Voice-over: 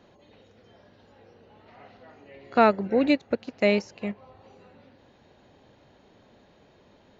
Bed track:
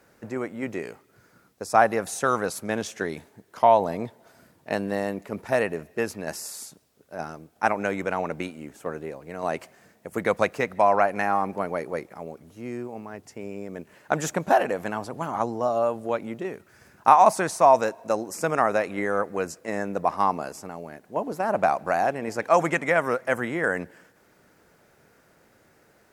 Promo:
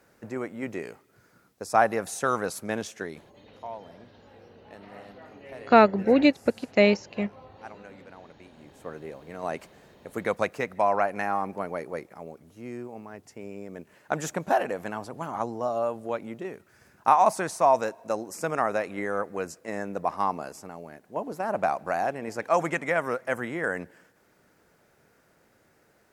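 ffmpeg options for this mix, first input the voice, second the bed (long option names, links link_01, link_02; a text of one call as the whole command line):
ffmpeg -i stem1.wav -i stem2.wav -filter_complex "[0:a]adelay=3150,volume=2.5dB[link_01];[1:a]volume=15dB,afade=type=out:start_time=2.74:duration=0.78:silence=0.112202,afade=type=in:start_time=8.43:duration=0.68:silence=0.133352[link_02];[link_01][link_02]amix=inputs=2:normalize=0" out.wav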